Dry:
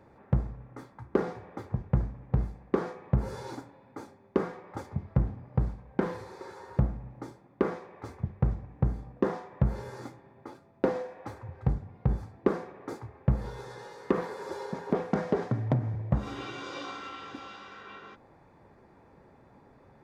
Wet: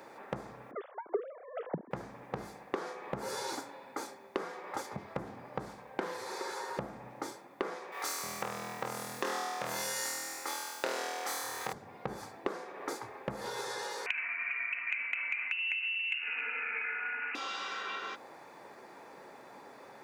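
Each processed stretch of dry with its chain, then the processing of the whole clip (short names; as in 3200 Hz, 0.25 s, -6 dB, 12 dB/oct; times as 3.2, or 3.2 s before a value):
0.71–1.91 sine-wave speech + tilt -4.5 dB/oct
7.92–11.73 tilt +4 dB/oct + flutter echo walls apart 4.2 m, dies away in 1 s
14.06–17.35 inverted band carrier 2800 Hz + compressor 2.5:1, threshold -32 dBFS + small resonant body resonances 240/1500/2100 Hz, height 10 dB
whole clip: Bessel high-pass 480 Hz, order 2; high shelf 3200 Hz +10 dB; compressor 4:1, threshold -44 dBFS; gain +9 dB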